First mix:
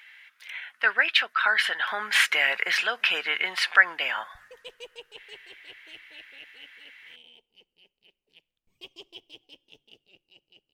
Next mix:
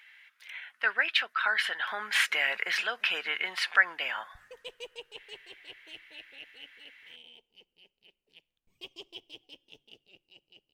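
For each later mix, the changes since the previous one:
speech −5.0 dB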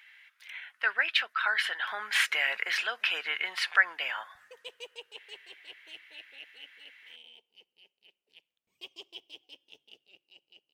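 master: add high-pass filter 510 Hz 6 dB per octave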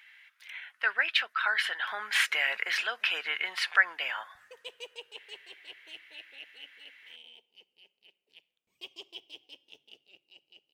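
background: send +6.0 dB

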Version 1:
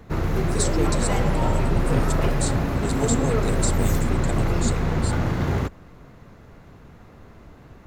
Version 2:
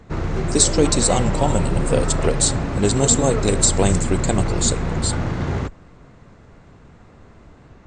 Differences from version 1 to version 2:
speech +11.5 dB
master: add linear-phase brick-wall low-pass 9,000 Hz

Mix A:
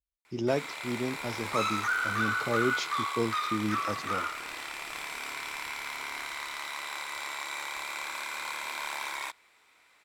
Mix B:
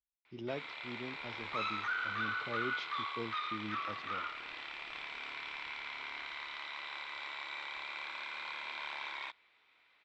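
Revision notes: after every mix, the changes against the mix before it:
speech −4.0 dB
master: add transistor ladder low-pass 4,100 Hz, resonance 40%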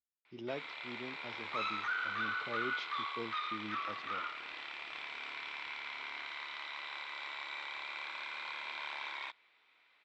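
master: add low-shelf EQ 110 Hz −11.5 dB

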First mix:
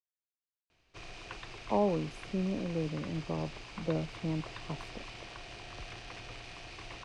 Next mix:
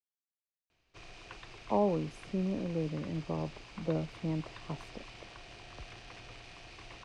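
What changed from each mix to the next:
background −4.0 dB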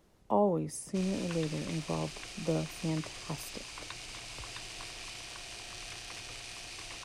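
speech: entry −1.40 s
master: remove head-to-tape spacing loss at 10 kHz 24 dB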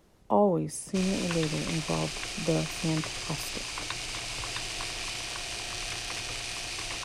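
speech +4.0 dB
background +9.0 dB

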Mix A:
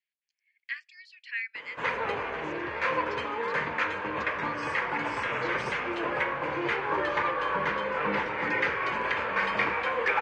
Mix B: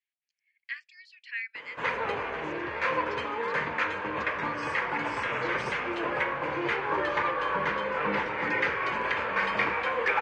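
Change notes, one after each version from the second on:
speech: send −9.5 dB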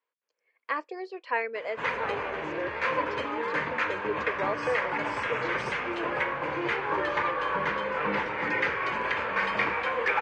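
speech: remove Butterworth high-pass 1,800 Hz 48 dB per octave

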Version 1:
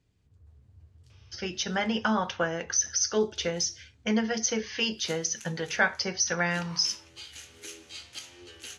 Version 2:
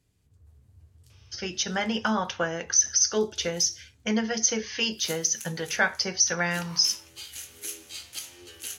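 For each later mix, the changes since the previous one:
master: remove high-frequency loss of the air 81 metres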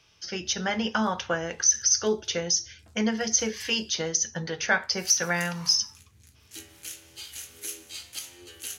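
speech: entry −1.10 s

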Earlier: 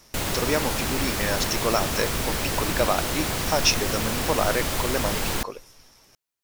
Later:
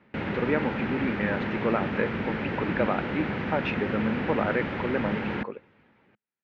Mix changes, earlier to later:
speech: add parametric band 5,500 Hz −15 dB 0.25 octaves
master: add loudspeaker in its box 120–2,300 Hz, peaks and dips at 210 Hz +7 dB, 670 Hz −7 dB, 1,100 Hz −7 dB

